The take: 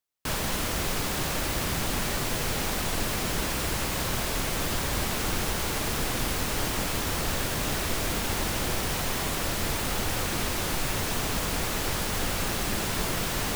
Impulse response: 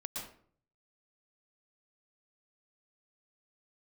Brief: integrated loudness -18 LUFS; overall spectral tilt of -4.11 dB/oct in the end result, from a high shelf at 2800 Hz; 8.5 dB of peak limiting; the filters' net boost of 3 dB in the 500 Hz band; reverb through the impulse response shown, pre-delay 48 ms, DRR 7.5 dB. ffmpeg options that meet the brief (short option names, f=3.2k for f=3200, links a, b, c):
-filter_complex "[0:a]equalizer=f=500:t=o:g=4,highshelf=f=2.8k:g=-5.5,alimiter=limit=-23dB:level=0:latency=1,asplit=2[a][b];[1:a]atrim=start_sample=2205,adelay=48[c];[b][c]afir=irnorm=-1:irlink=0,volume=-7.5dB[d];[a][d]amix=inputs=2:normalize=0,volume=14dB"